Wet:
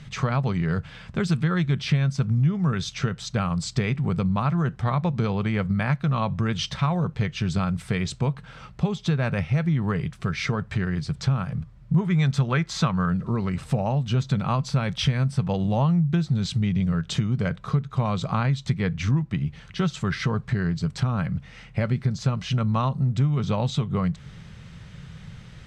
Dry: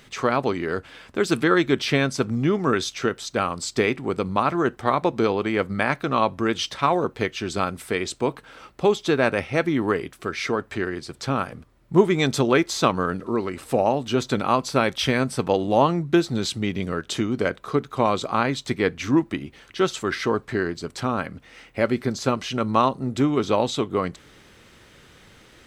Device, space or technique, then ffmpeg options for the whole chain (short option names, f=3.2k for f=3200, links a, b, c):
jukebox: -filter_complex "[0:a]asettb=1/sr,asplit=3[a][b][c];[a]atrim=end=11.984[d];[b]atrim=start=11.98:end=13.09,asetpts=PTS-STARTPTS,afade=t=in:d=0.004:c=qsin,afade=t=out:st=1.106:d=0.004:c=qsin,equalizer=f=1.5k:w=0.88:g=6[e];[c]atrim=start=13.086[f];[d][e]acrossfade=d=0.004:c1=hsin:c2=qsin[g];[g][f]acrossfade=d=0.004:c1=qsin:c2=hsin,lowpass=7.2k,lowshelf=f=220:t=q:w=3:g=11,acompressor=threshold=-22dB:ratio=3"